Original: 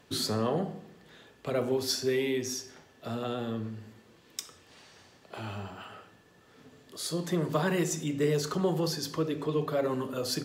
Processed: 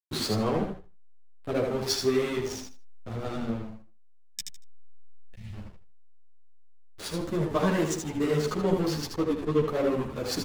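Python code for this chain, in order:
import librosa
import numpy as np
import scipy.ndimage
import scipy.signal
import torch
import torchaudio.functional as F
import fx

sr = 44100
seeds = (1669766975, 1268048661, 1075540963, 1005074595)

y = fx.backlash(x, sr, play_db=-28.0)
y = fx.spec_box(y, sr, start_s=3.92, length_s=1.61, low_hz=230.0, high_hz=1700.0, gain_db=-17)
y = fx.echo_feedback(y, sr, ms=78, feedback_pct=20, wet_db=-5.5)
y = fx.ensemble(y, sr)
y = y * librosa.db_to_amplitude(6.5)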